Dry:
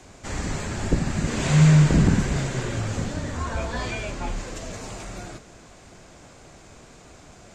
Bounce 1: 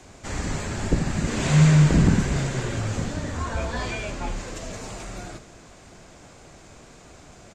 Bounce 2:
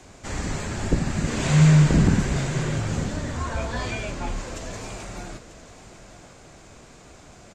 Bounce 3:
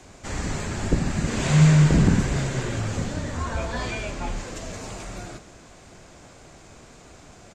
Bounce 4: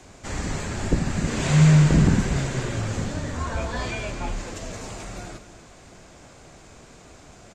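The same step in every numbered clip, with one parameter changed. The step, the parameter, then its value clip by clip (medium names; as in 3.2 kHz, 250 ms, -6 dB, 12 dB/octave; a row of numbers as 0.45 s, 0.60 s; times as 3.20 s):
delay, time: 74 ms, 941 ms, 126 ms, 243 ms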